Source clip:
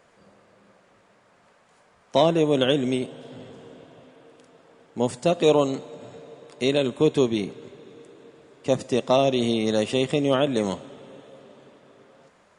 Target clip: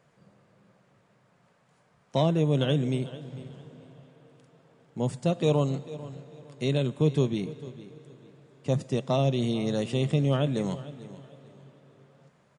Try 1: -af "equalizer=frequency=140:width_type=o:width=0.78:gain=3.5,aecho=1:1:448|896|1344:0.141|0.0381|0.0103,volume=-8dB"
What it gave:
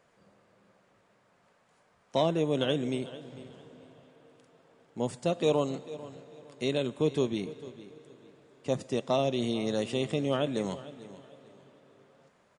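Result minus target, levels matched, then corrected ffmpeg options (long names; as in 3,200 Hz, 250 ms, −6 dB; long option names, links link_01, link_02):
125 Hz band −7.0 dB
-af "equalizer=frequency=140:width_type=o:width=0.78:gain=15.5,aecho=1:1:448|896|1344:0.141|0.0381|0.0103,volume=-8dB"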